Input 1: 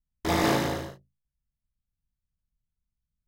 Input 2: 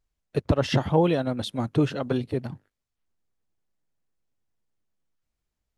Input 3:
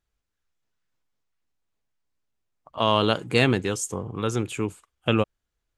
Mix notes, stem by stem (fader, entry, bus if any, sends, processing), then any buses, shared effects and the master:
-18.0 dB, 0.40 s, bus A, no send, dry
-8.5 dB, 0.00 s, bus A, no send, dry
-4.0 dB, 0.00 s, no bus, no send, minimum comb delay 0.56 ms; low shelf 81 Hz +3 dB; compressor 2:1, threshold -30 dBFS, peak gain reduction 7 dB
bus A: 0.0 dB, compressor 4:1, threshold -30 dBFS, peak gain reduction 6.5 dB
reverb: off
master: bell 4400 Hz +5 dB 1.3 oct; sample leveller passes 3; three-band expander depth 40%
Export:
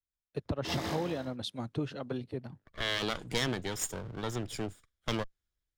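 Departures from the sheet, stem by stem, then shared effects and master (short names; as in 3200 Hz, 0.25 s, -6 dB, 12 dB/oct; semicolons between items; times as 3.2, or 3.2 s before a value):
stem 1 -18.0 dB -> -10.5 dB; master: missing sample leveller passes 3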